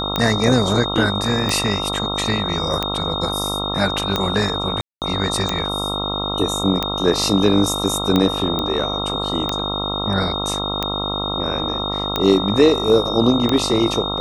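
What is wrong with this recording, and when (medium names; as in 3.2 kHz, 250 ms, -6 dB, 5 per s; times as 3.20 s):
buzz 50 Hz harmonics 27 -26 dBFS
tick 45 rpm -5 dBFS
whine 3.7 kHz -24 dBFS
4.81–5.02 s: dropout 208 ms
8.59 s: pop -9 dBFS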